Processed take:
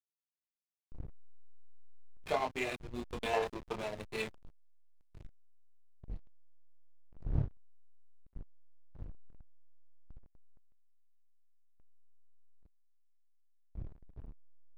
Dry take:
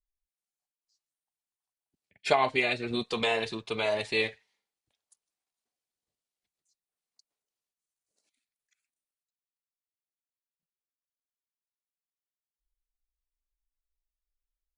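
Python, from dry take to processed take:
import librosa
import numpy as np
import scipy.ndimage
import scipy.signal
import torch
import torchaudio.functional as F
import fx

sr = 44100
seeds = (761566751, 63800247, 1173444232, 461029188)

p1 = fx.dmg_wind(x, sr, seeds[0], corner_hz=130.0, level_db=-38.0)
p2 = fx.peak_eq(p1, sr, hz=880.0, db=14.0, octaves=1.4, at=(3.33, 3.79))
p3 = p2 + fx.echo_feedback(p2, sr, ms=998, feedback_pct=24, wet_db=-18.0, dry=0)
p4 = fx.chorus_voices(p3, sr, voices=2, hz=0.19, base_ms=26, depth_ms=3.2, mix_pct=45)
p5 = fx.backlash(p4, sr, play_db=-26.5)
y = p5 * 10.0 ** (-4.5 / 20.0)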